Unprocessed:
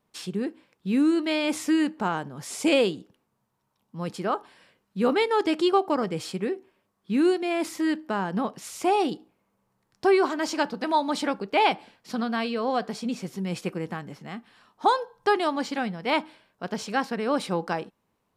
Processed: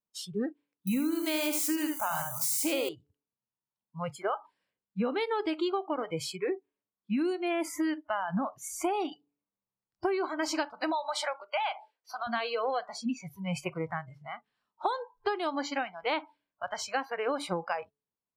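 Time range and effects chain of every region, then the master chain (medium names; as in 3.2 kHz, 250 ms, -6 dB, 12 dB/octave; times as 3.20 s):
0.87–2.89 s: zero-crossing glitches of -24.5 dBFS + treble shelf 8.7 kHz +6 dB + delay 77 ms -6 dB
10.92–12.27 s: high-pass 400 Hz 24 dB/octave + compression 2:1, threshold -29 dBFS
whole clip: de-hum 144.2 Hz, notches 3; spectral noise reduction 26 dB; compression 12:1, threshold -28 dBFS; trim +1.5 dB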